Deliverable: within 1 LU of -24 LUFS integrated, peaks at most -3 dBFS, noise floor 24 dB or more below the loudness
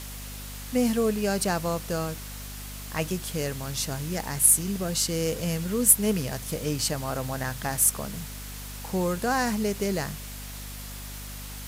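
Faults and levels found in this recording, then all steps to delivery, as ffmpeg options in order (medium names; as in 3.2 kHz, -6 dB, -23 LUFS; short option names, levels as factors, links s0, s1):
hum 50 Hz; highest harmonic 250 Hz; hum level -37 dBFS; noise floor -39 dBFS; noise floor target -50 dBFS; loudness -25.5 LUFS; peak level -3.5 dBFS; loudness target -24.0 LUFS
-> -af "bandreject=f=50:t=h:w=4,bandreject=f=100:t=h:w=4,bandreject=f=150:t=h:w=4,bandreject=f=200:t=h:w=4,bandreject=f=250:t=h:w=4"
-af "afftdn=nr=11:nf=-39"
-af "volume=1.19,alimiter=limit=0.708:level=0:latency=1"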